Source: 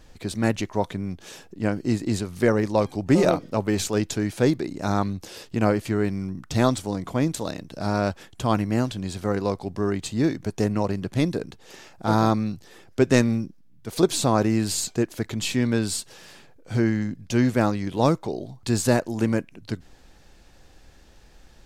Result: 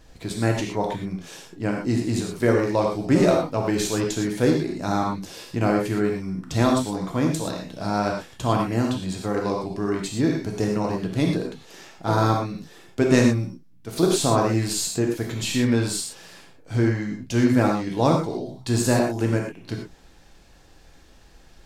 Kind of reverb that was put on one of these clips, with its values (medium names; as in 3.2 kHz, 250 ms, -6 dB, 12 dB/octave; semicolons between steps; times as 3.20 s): gated-style reverb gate 140 ms flat, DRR 0 dB; trim -1.5 dB